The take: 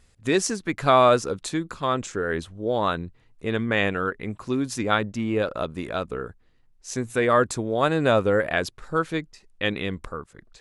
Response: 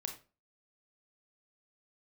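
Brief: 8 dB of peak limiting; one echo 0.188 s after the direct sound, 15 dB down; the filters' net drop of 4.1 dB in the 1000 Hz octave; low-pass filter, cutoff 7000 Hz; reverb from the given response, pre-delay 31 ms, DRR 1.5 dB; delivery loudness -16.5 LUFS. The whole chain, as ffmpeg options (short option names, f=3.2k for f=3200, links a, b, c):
-filter_complex "[0:a]lowpass=7k,equalizer=f=1k:t=o:g=-5.5,alimiter=limit=-16dB:level=0:latency=1,aecho=1:1:188:0.178,asplit=2[a][b];[1:a]atrim=start_sample=2205,adelay=31[c];[b][c]afir=irnorm=-1:irlink=0,volume=-0.5dB[d];[a][d]amix=inputs=2:normalize=0,volume=9.5dB"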